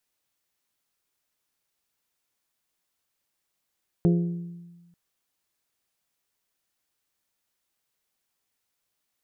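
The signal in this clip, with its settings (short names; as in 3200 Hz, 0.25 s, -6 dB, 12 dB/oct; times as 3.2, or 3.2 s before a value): glass hit bell, lowest mode 172 Hz, modes 5, decay 1.32 s, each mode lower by 6 dB, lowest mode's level -16 dB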